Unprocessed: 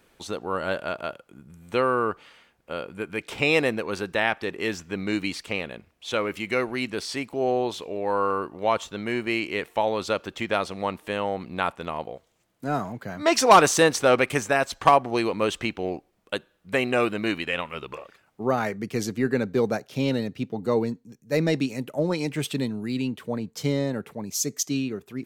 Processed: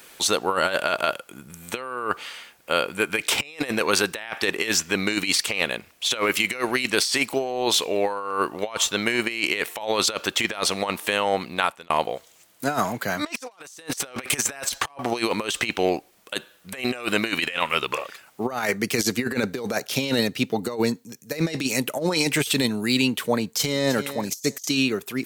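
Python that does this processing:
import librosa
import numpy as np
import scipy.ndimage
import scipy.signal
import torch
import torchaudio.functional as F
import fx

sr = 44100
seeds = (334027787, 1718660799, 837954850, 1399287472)

y = fx.echo_throw(x, sr, start_s=23.39, length_s=0.56, ms=330, feedback_pct=20, wet_db=-17.5)
y = fx.edit(y, sr, fx.fade_out_span(start_s=11.31, length_s=0.59), tone=tone)
y = fx.tilt_eq(y, sr, slope=3.0)
y = fx.over_compress(y, sr, threshold_db=-30.0, ratio=-0.5)
y = y * 10.0 ** (6.0 / 20.0)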